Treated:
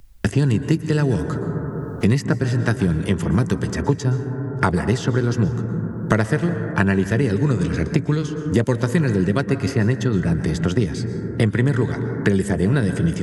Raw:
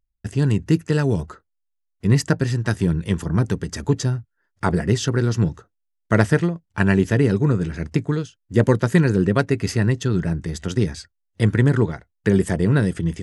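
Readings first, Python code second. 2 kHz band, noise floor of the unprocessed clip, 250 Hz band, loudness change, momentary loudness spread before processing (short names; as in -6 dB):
+1.0 dB, -75 dBFS, +1.0 dB, 0.0 dB, 8 LU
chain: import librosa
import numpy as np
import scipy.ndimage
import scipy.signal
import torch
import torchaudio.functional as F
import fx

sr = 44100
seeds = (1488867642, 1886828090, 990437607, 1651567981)

y = fx.rev_plate(x, sr, seeds[0], rt60_s=1.6, hf_ratio=0.25, predelay_ms=105, drr_db=10.5)
y = fx.band_squash(y, sr, depth_pct=100)
y = y * 10.0 ** (-1.0 / 20.0)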